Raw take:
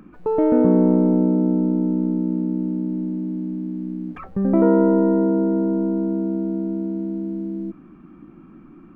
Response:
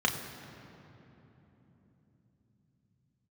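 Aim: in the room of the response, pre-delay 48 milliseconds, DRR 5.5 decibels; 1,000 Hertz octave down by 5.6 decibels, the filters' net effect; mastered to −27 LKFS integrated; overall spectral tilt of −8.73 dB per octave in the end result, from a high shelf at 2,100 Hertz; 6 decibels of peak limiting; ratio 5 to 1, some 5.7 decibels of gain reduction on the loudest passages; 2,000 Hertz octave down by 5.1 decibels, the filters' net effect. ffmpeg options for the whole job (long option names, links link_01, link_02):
-filter_complex "[0:a]equalizer=frequency=1000:width_type=o:gain=-7,equalizer=frequency=2000:width_type=o:gain=-8,highshelf=frequency=2100:gain=7.5,acompressor=threshold=-18dB:ratio=5,alimiter=limit=-17dB:level=0:latency=1,asplit=2[link_01][link_02];[1:a]atrim=start_sample=2205,adelay=48[link_03];[link_02][link_03]afir=irnorm=-1:irlink=0,volume=-16dB[link_04];[link_01][link_04]amix=inputs=2:normalize=0,volume=-2.5dB"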